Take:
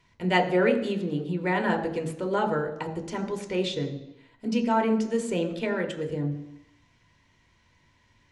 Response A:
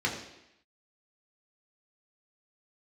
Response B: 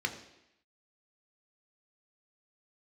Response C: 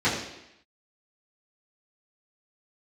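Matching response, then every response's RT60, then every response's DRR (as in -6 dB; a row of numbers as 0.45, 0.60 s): B; 0.85, 0.85, 0.85 s; -2.5, 4.0, -12.0 dB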